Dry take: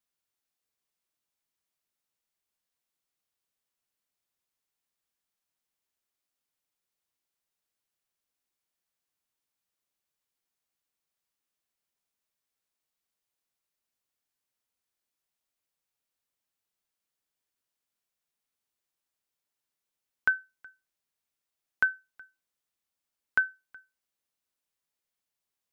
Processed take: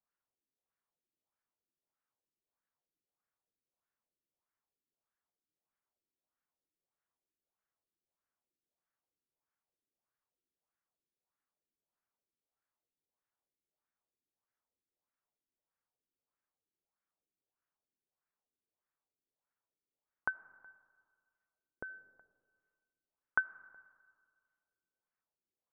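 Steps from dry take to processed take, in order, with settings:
auto-filter low-pass sine 1.6 Hz 320–1,600 Hz
on a send: convolution reverb RT60 1.9 s, pre-delay 35 ms, DRR 19 dB
on the sum: level −4.5 dB

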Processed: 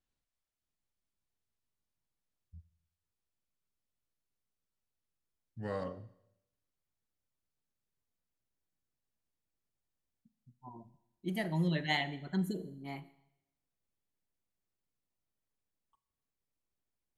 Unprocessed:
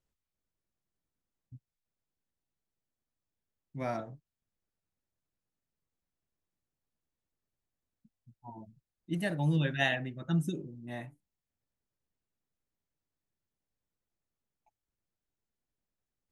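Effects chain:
gliding playback speed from 54% → 136%
four-comb reverb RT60 0.83 s, combs from 29 ms, DRR 15.5 dB
level −3 dB

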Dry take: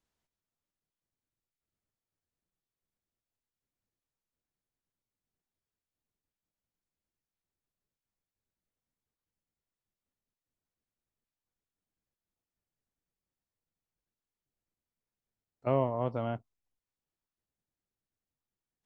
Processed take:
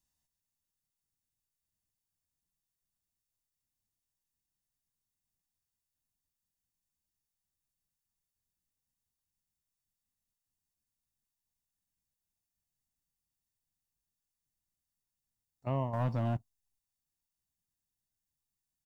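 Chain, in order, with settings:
bass and treble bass +5 dB, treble +13 dB
comb filter 1.1 ms, depth 45%
0:15.93–0:16.37: leveller curve on the samples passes 2
level −7 dB

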